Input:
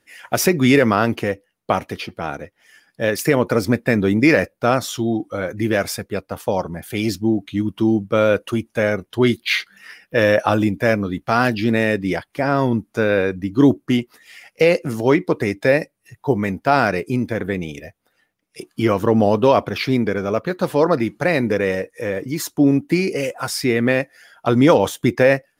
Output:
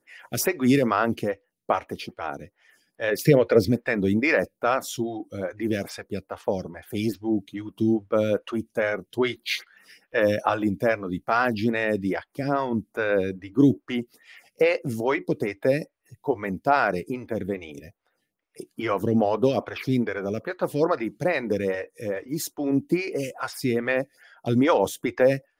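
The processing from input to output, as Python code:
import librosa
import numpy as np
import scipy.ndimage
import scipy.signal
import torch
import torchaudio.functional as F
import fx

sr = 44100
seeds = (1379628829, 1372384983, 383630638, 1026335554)

y = fx.graphic_eq(x, sr, hz=(125, 500, 1000, 2000, 4000, 8000), db=(9, 8, -10, 5, 8, -6), at=(3.11, 3.69))
y = fx.stagger_phaser(y, sr, hz=2.4)
y = F.gain(torch.from_numpy(y), -3.5).numpy()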